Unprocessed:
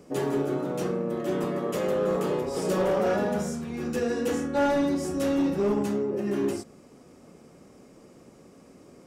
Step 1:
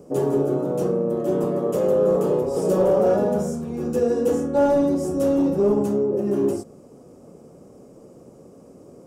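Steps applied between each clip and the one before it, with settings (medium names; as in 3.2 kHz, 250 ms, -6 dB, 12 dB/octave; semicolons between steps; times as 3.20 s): graphic EQ 125/500/2000/4000 Hz +4/+6/-11/-7 dB; trim +2.5 dB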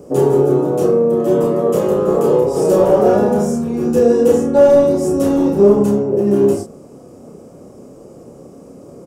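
doubling 30 ms -4 dB; trim +6.5 dB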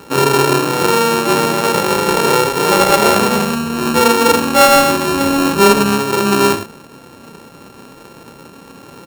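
sorted samples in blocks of 32 samples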